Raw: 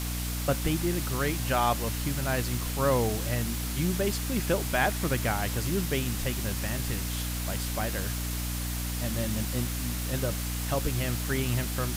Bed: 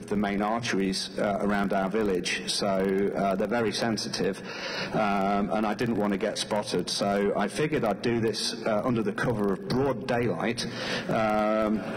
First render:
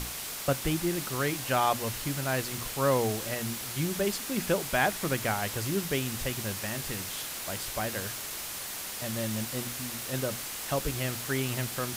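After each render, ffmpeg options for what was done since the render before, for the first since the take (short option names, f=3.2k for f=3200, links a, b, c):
-af "bandreject=f=60:t=h:w=6,bandreject=f=120:t=h:w=6,bandreject=f=180:t=h:w=6,bandreject=f=240:t=h:w=6,bandreject=f=300:t=h:w=6"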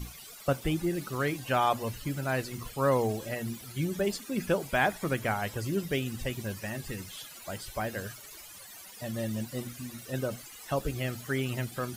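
-af "afftdn=nr=17:nf=-38"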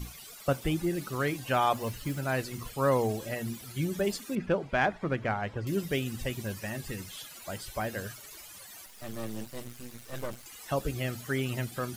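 -filter_complex "[0:a]asettb=1/sr,asplit=3[a][b][c];[a]atrim=end=1.754[d];[b]atrim=start=1.75:end=2.19,asetpts=PTS-STARTPTS,afade=t=in:d=0.004:c=qsin,afade=t=out:st=0.436:d=0.004:c=qsin,acrusher=bits=5:mode=log:mix=0:aa=0.000001[e];[c]atrim=start=2.186[f];[d][e]acrossfade=d=0.004:c1=hsin:c2=qsin[g];[g][f]acrossfade=d=0.004:c1=qsin:c2=hsin,asettb=1/sr,asplit=3[h][i][j];[h]atrim=end=4.354[k];[i]atrim=start=4.35:end=5.67,asetpts=PTS-STARTPTS,afade=t=in:d=0.004:c=qsin,afade=t=out:st=1.316:d=0.004:c=qsin,adynamicsmooth=sensitivity=1:basefreq=2.5k[l];[j]atrim=start=5.666[m];[k][l]acrossfade=d=0.004:c1=hsin:c2=qsin[n];[n][m]acrossfade=d=0.004:c1=qsin:c2=hsin,asettb=1/sr,asplit=3[o][p][q];[o]atrim=end=8.864[r];[p]atrim=start=8.86:end=10.46,asetpts=PTS-STARTPTS,afade=t=in:d=0.004:c=qsin,afade=t=out:st=1.596:d=0.004:c=qsin,aeval=exprs='max(val(0),0)':c=same[s];[q]atrim=start=10.456[t];[r][s]acrossfade=d=0.004:c1=hsin:c2=qsin[u];[u][t]acrossfade=d=0.004:c1=qsin:c2=hsin"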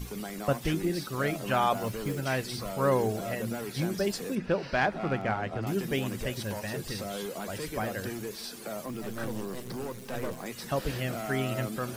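-filter_complex "[1:a]volume=-11.5dB[a];[0:a][a]amix=inputs=2:normalize=0"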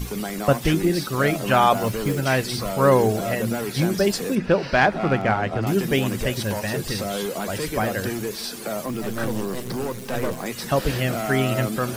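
-af "volume=9dB"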